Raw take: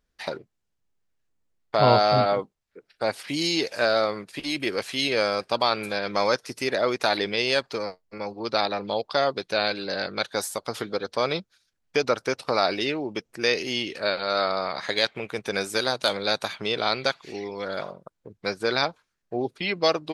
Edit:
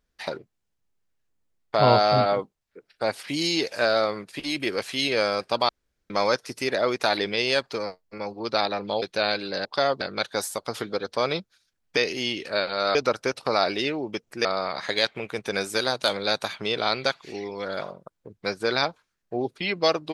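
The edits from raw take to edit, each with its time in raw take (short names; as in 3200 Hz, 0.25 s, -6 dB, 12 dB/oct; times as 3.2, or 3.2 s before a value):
5.69–6.1 room tone
9.02–9.38 move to 10.01
13.47–14.45 move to 11.97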